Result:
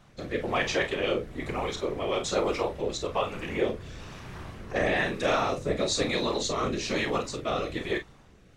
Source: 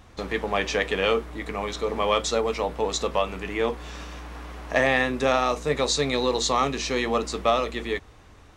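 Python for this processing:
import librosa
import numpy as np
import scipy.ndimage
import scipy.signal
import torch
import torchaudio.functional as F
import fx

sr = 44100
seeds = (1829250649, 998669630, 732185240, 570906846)

p1 = fx.rotary(x, sr, hz=1.1)
p2 = fx.whisperise(p1, sr, seeds[0])
p3 = p2 + fx.room_early_taps(p2, sr, ms=(32, 46), db=(-9.0, -11.0), dry=0)
y = p3 * 10.0 ** (-2.0 / 20.0)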